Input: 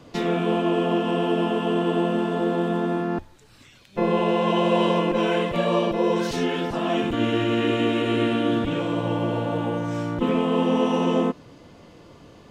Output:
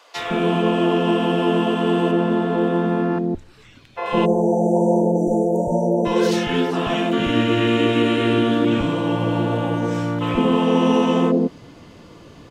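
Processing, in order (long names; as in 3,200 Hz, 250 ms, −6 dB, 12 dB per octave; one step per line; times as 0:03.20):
0:02.11–0:04.06: high-shelf EQ 4,400 Hz −10 dB
0:04.25–0:06.06: time-frequency box erased 960–5,800 Hz
multiband delay without the direct sound highs, lows 160 ms, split 630 Hz
level +5 dB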